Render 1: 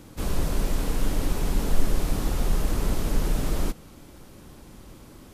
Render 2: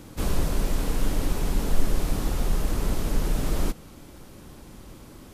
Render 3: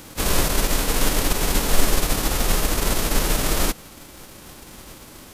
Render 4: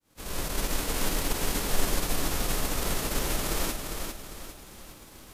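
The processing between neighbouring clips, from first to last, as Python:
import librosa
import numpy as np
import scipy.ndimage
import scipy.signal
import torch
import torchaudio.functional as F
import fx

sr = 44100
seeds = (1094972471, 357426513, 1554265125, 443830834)

y1 = fx.rider(x, sr, range_db=10, speed_s=0.5)
y2 = fx.envelope_flatten(y1, sr, power=0.6)
y2 = F.gain(torch.from_numpy(y2), 2.5).numpy()
y3 = fx.fade_in_head(y2, sr, length_s=0.63)
y3 = fx.echo_feedback(y3, sr, ms=401, feedback_pct=40, wet_db=-5.5)
y3 = F.gain(torch.from_numpy(y3), -8.5).numpy()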